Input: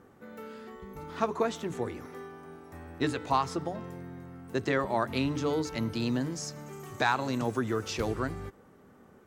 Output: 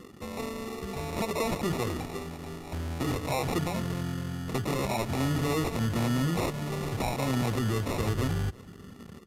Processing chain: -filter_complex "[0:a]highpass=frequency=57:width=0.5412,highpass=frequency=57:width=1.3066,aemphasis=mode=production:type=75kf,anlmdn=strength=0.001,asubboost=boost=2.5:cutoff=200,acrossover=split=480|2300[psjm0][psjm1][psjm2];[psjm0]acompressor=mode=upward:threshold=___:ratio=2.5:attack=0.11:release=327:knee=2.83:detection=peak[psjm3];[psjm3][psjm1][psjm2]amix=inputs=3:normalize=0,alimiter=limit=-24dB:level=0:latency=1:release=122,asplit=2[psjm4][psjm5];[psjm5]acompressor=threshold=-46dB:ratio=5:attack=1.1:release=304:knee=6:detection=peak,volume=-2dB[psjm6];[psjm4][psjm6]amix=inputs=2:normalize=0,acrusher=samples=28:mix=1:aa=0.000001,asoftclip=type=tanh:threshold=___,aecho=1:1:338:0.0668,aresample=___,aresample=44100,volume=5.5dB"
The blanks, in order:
-51dB, -26dB, 32000